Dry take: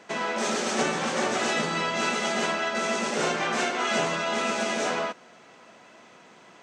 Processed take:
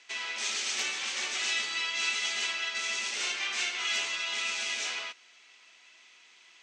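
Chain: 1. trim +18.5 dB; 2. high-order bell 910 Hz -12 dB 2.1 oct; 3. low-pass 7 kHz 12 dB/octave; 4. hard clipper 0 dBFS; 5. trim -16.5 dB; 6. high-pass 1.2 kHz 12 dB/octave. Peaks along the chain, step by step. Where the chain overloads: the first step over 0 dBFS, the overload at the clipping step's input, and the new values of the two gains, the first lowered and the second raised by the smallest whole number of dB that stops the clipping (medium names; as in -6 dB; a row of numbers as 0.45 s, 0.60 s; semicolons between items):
+5.0 dBFS, +3.0 dBFS, +3.0 dBFS, 0.0 dBFS, -16.5 dBFS, -18.0 dBFS; step 1, 3.0 dB; step 1 +15.5 dB, step 5 -13.5 dB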